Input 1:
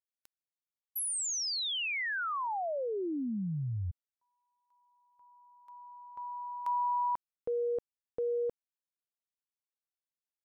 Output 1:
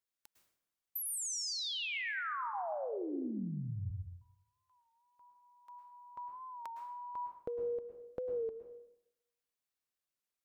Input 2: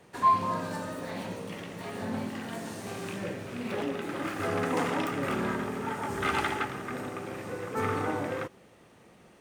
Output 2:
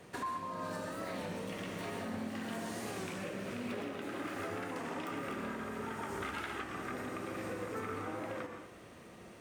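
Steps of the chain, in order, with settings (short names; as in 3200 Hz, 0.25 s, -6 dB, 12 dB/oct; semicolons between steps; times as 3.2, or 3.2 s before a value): notch 860 Hz, Q 12; dynamic EQ 120 Hz, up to -6 dB, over -51 dBFS, Q 1.7; compressor 10:1, threshold -40 dBFS; plate-style reverb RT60 0.83 s, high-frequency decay 0.75×, pre-delay 95 ms, DRR 4 dB; record warp 33 1/3 rpm, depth 100 cents; gain +2 dB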